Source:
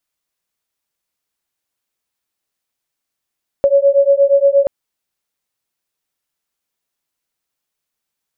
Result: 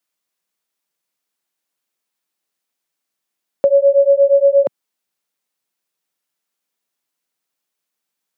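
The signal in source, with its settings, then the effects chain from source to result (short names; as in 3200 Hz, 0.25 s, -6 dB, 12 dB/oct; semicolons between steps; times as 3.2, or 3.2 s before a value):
beating tones 554 Hz, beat 8.5 Hz, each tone -11.5 dBFS 1.03 s
HPF 150 Hz 24 dB/oct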